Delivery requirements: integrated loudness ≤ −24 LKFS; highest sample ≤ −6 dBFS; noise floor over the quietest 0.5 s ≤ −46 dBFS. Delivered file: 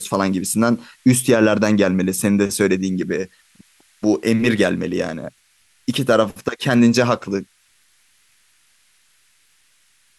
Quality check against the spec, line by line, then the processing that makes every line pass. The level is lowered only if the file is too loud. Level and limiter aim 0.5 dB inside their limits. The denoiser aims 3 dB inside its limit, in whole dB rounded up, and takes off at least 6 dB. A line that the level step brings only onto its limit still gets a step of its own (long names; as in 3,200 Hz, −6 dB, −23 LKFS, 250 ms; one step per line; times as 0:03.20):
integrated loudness −18.5 LKFS: out of spec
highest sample −4.0 dBFS: out of spec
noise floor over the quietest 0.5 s −59 dBFS: in spec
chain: level −6 dB